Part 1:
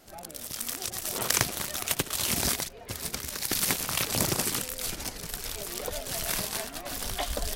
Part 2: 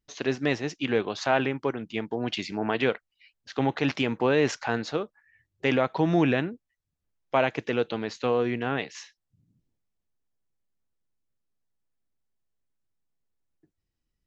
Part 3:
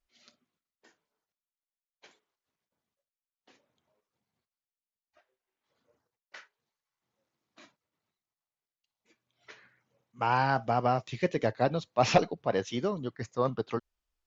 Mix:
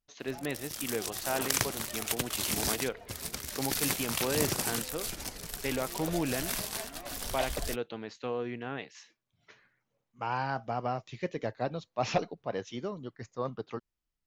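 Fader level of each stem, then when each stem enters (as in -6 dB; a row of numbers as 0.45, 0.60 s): -4.0, -9.5, -6.0 dB; 0.20, 0.00, 0.00 s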